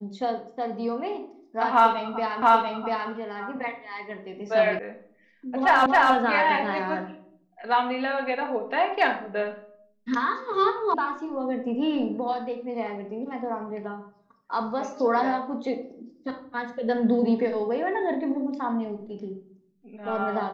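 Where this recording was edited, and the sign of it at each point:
2.42 s: repeat of the last 0.69 s
4.79 s: sound stops dead
5.86 s: repeat of the last 0.27 s
10.94 s: sound stops dead

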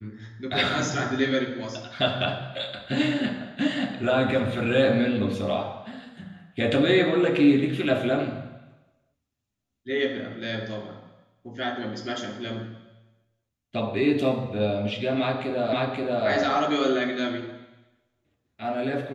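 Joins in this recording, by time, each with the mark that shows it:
15.73 s: repeat of the last 0.53 s

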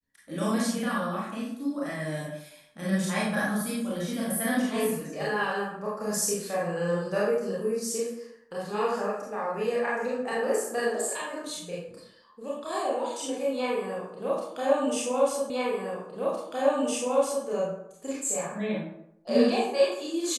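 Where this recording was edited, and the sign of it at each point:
15.50 s: repeat of the last 1.96 s

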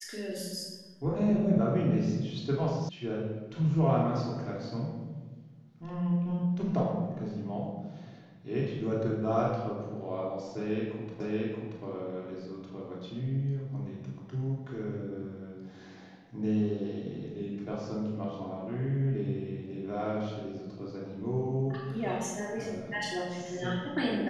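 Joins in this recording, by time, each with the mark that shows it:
2.89 s: sound stops dead
11.20 s: repeat of the last 0.63 s

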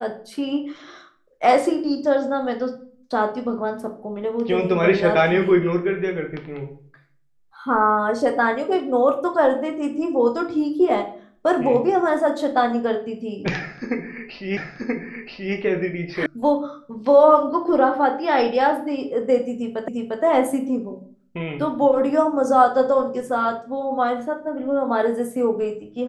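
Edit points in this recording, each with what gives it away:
14.57 s: repeat of the last 0.98 s
16.26 s: sound stops dead
19.88 s: repeat of the last 0.35 s

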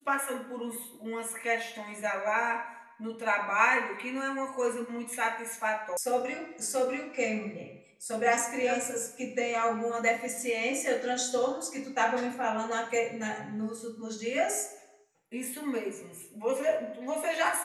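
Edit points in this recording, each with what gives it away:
5.97 s: sound stops dead

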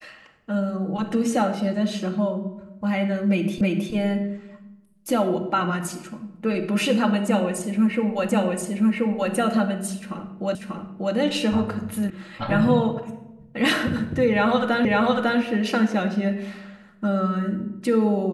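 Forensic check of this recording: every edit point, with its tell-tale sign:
3.61 s: repeat of the last 0.32 s
8.29 s: repeat of the last 1.03 s
10.55 s: repeat of the last 0.59 s
12.10 s: sound stops dead
14.85 s: repeat of the last 0.55 s

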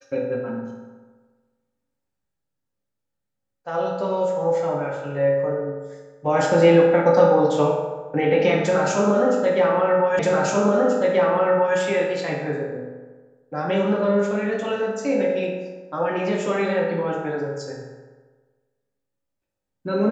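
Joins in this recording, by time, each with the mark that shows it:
10.19 s: repeat of the last 1.58 s

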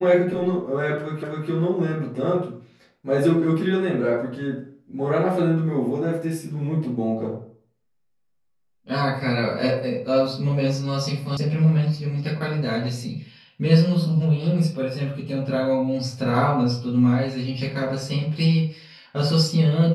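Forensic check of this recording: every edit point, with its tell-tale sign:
1.23 s: repeat of the last 0.26 s
11.37 s: sound stops dead

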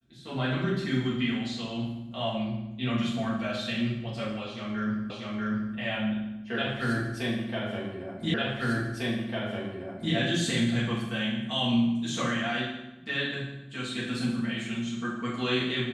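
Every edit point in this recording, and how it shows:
5.10 s: repeat of the last 0.64 s
8.34 s: repeat of the last 1.8 s

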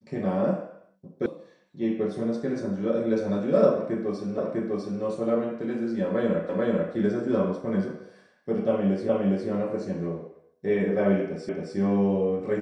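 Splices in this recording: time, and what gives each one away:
1.26 s: sound stops dead
4.38 s: repeat of the last 0.65 s
6.49 s: repeat of the last 0.44 s
9.09 s: repeat of the last 0.41 s
11.49 s: repeat of the last 0.27 s

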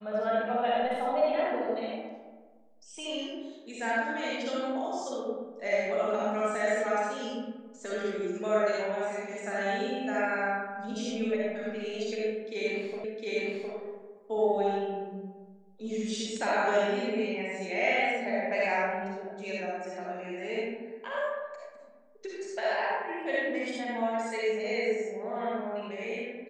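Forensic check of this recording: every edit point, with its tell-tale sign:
13.04 s: repeat of the last 0.71 s

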